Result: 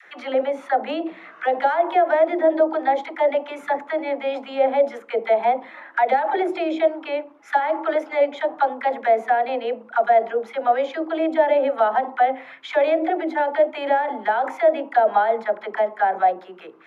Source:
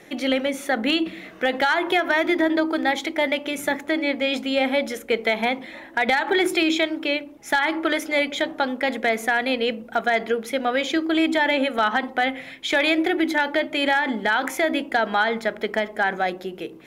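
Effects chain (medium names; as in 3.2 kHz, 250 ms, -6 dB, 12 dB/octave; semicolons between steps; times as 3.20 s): auto-wah 630–1500 Hz, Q 2.8, down, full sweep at -16.5 dBFS; phase dispersion lows, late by 58 ms, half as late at 510 Hz; trim +8.5 dB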